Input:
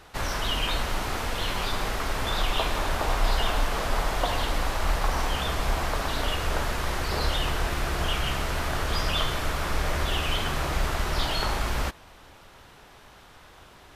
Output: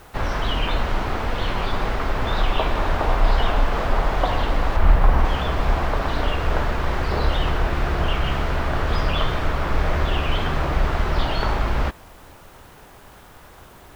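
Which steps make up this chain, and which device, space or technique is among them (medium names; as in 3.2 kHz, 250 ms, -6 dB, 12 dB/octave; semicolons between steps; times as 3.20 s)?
4.76–5.25 s: tone controls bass +5 dB, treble -8 dB; cassette deck with a dirty head (tape spacing loss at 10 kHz 24 dB; wow and flutter; white noise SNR 36 dB); trim +7 dB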